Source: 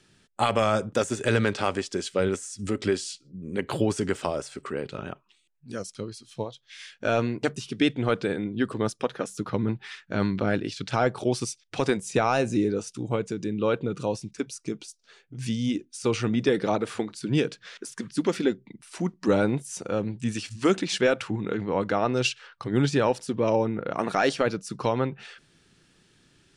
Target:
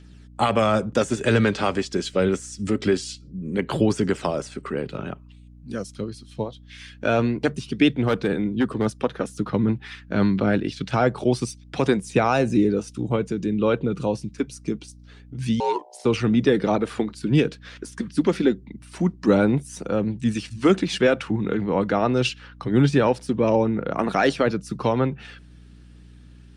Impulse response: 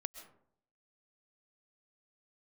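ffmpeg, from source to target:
-filter_complex "[0:a]highpass=140,highshelf=f=9.3k:g=-11,acrossover=split=230|1200|1900[a][b][c][d];[a]acontrast=71[e];[d]aphaser=in_gain=1:out_gain=1:delay=4.4:decay=0.49:speed=0.25:type=triangular[f];[e][b][c][f]amix=inputs=4:normalize=0,aeval=exprs='val(0)+0.00398*(sin(2*PI*60*n/s)+sin(2*PI*2*60*n/s)/2+sin(2*PI*3*60*n/s)/3+sin(2*PI*4*60*n/s)/4+sin(2*PI*5*60*n/s)/5)':c=same,asettb=1/sr,asplit=3[g][h][i];[g]atrim=end=7.964[j];[h]atrim=start=7.96:end=8.86,asetpts=PTS-STARTPTS,afade=t=in:d=0.004:c=qsin,afade=t=out:st=0.896:d=0.004:c=qsin,volume=17.5dB,asoftclip=hard,volume=-17.5dB[k];[i]atrim=start=8.856[l];[j][k]acrossfade=d=0.004:c1=hsin:c2=qsin[m];[m][l]acrossfade=d=0.004:c1=qsin:c2=hsin,asettb=1/sr,asplit=3[n][o][p];[n]atrim=end=15.604[q];[o]atrim=start=15.6:end=16.05,asetpts=PTS-STARTPTS,afade=t=in:d=0.004:c=qsin,afade=t=out:st=0.446:d=0.004:c=qsin,aeval=exprs='val(0)*sin(2*PI*670*n/s)':c=same[r];[p]atrim=start=16.046[s];[q][r]acrossfade=d=0.004:c1=hsin:c2=qsin[t];[t][s]acrossfade=d=0.004:c1=qsin:c2=hsin,volume=3dB" -ar 48000 -c:a libopus -b:a 48k

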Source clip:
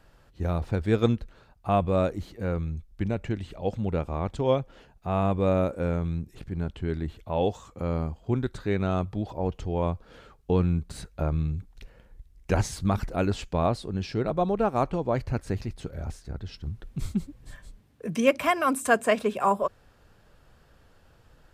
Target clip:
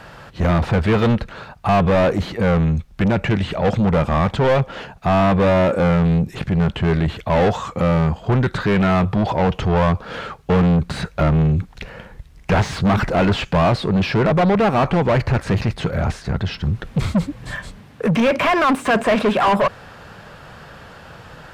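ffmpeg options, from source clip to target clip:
-filter_complex "[0:a]lowshelf=f=230:t=q:w=1.5:g=6.5,asplit=2[a][b];[b]highpass=f=720:p=1,volume=35dB,asoftclip=type=tanh:threshold=-4.5dB[c];[a][c]amix=inputs=2:normalize=0,lowpass=f=2.3k:p=1,volume=-6dB,acrossover=split=3900[d][e];[e]acompressor=threshold=-37dB:ratio=4:attack=1:release=60[f];[d][f]amix=inputs=2:normalize=0,volume=-3dB"

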